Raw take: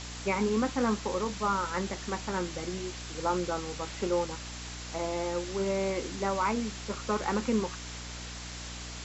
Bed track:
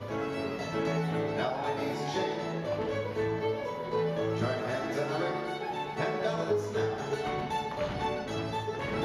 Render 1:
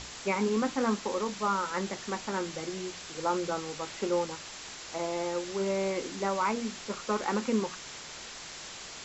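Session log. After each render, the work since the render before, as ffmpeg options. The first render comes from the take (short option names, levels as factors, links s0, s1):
-af "bandreject=f=60:t=h:w=6,bandreject=f=120:t=h:w=6,bandreject=f=180:t=h:w=6,bandreject=f=240:t=h:w=6,bandreject=f=300:t=h:w=6"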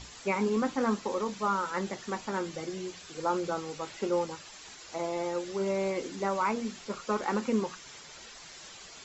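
-af "afftdn=nr=9:nf=-44"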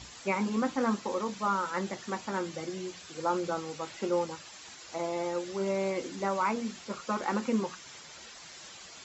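-af "highpass=58,bandreject=f=420:w=12"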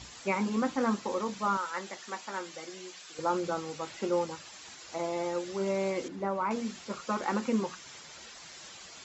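-filter_complex "[0:a]asettb=1/sr,asplit=3[s0][s1][s2];[s0]atrim=end=1.574[s3];[s1]atrim=start=1.57:end=3.19,asetpts=PTS-STARTPTS,afade=t=in:d=0.004:c=qsin,afade=t=out:st=1.616:d=0.004:c=qsin,highpass=f=810:p=1[s4];[s2]atrim=start=3.186[s5];[s3][s4]acrossfade=d=0.004:c1=hsin:c2=qsin[s6];[s6][s5]acrossfade=d=0.004:c1=qsin:c2=hsin,asettb=1/sr,asplit=3[s7][s8][s9];[s7]atrim=end=6.084[s10];[s8]atrim=start=6.08:end=6.51,asetpts=PTS-STARTPTS,afade=t=in:d=0.004:c=qsin,afade=t=out:st=0.426:d=0.004:c=qsin,lowpass=f=1100:p=1[s11];[s9]atrim=start=6.506[s12];[s10][s11]acrossfade=d=0.004:c1=hsin:c2=qsin[s13];[s13][s12]acrossfade=d=0.004:c1=qsin:c2=hsin"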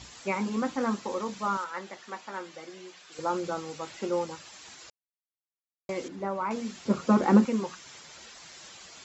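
-filter_complex "[0:a]asettb=1/sr,asplit=3[s0][s1][s2];[s0]atrim=end=1.644[s3];[s1]atrim=start=1.64:end=3.12,asetpts=PTS-STARTPTS,afade=t=in:d=0.004:c=qsin,afade=t=out:st=1.476:d=0.004:c=qsin,lowpass=f=3100:p=1[s4];[s2]atrim=start=3.116[s5];[s3][s4]acrossfade=d=0.004:c1=hsin:c2=qsin[s6];[s6][s5]acrossfade=d=0.004:c1=qsin:c2=hsin,asettb=1/sr,asplit=3[s7][s8][s9];[s7]atrim=end=6.854[s10];[s8]atrim=start=6.85:end=7.45,asetpts=PTS-STARTPTS,afade=t=in:d=0.004:c=qsin,afade=t=out:st=0.596:d=0.004:c=qsin,equalizer=f=180:w=0.34:g=15[s11];[s9]atrim=start=7.446[s12];[s10][s11]acrossfade=d=0.004:c1=hsin:c2=qsin[s13];[s13][s12]acrossfade=d=0.004:c1=qsin:c2=hsin,asplit=3[s14][s15][s16];[s14]atrim=end=4.9,asetpts=PTS-STARTPTS,afade=t=out:st=4.896:d=0.004:c=hsin[s17];[s15]atrim=start=4.9:end=5.89,asetpts=PTS-STARTPTS,volume=0[s18];[s16]atrim=start=5.89,asetpts=PTS-STARTPTS,afade=t=in:d=0.004:c=hsin[s19];[s17][s18][s19]concat=n=3:v=0:a=1"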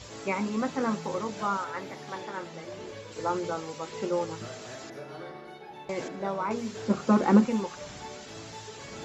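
-filter_complex "[1:a]volume=0.299[s0];[0:a][s0]amix=inputs=2:normalize=0"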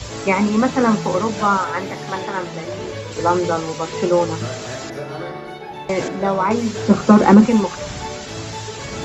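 -filter_complex "[0:a]acrossover=split=120|420|2500[s0][s1][s2][s3];[s0]acontrast=72[s4];[s4][s1][s2][s3]amix=inputs=4:normalize=0,alimiter=level_in=4.22:limit=0.891:release=50:level=0:latency=1"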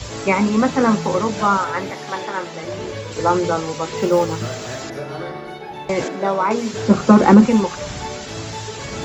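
-filter_complex "[0:a]asettb=1/sr,asplit=3[s0][s1][s2];[s0]atrim=end=1.904[s3];[s1]atrim=start=1.9:end=2.63,asetpts=PTS-STARTPTS,afade=t=in:d=0.004:c=qsin,afade=t=out:st=0.726:d=0.004:c=qsin,lowshelf=f=180:g=-11.5[s4];[s2]atrim=start=2.626[s5];[s3][s4]acrossfade=d=0.004:c1=hsin:c2=qsin[s6];[s6][s5]acrossfade=d=0.004:c1=qsin:c2=hsin,asettb=1/sr,asplit=3[s7][s8][s9];[s7]atrim=end=3.974[s10];[s8]atrim=start=3.97:end=4.82,asetpts=PTS-STARTPTS,afade=t=in:d=0.004:c=qsin,afade=t=out:st=0.846:d=0.004:c=qsin,acrusher=bits=8:mode=log:mix=0:aa=0.000001[s11];[s9]atrim=start=4.816[s12];[s10][s11]acrossfade=d=0.004:c1=hsin:c2=qsin[s13];[s13][s12]acrossfade=d=0.004:c1=qsin:c2=hsin,asettb=1/sr,asplit=3[s14][s15][s16];[s14]atrim=end=6.044[s17];[s15]atrim=start=6.04:end=6.74,asetpts=PTS-STARTPTS,afade=t=in:d=0.004:c=qsin,afade=t=out:st=0.696:d=0.004:c=qsin,highpass=230[s18];[s16]atrim=start=6.736[s19];[s17][s18]acrossfade=d=0.004:c1=hsin:c2=qsin[s20];[s20][s19]acrossfade=d=0.004:c1=qsin:c2=hsin"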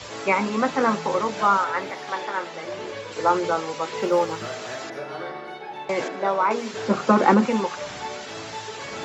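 -af "highpass=f=620:p=1,aemphasis=mode=reproduction:type=50kf"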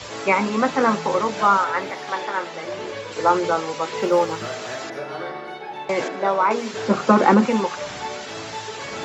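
-af "volume=1.33,alimiter=limit=0.708:level=0:latency=1"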